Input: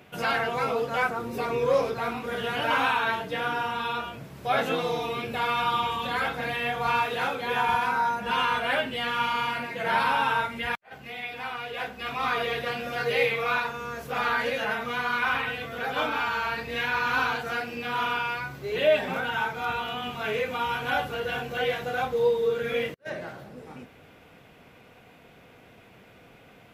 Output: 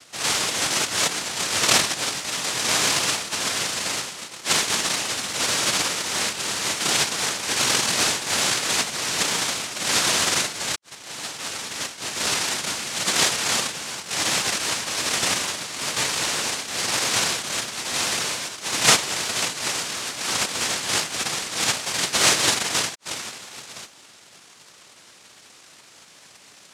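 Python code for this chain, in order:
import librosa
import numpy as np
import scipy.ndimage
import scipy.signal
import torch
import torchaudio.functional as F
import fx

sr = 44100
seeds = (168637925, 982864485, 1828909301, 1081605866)

y = fx.peak_eq(x, sr, hz=130.0, db=3.5, octaves=1.8)
y = fx.noise_vocoder(y, sr, seeds[0], bands=1)
y = y * librosa.db_to_amplitude(3.0)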